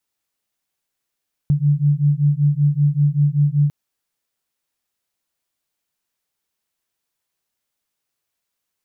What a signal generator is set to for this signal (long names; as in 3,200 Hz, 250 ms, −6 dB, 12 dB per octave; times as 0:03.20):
two tones that beat 143 Hz, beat 5.2 Hz, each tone −16.5 dBFS 2.20 s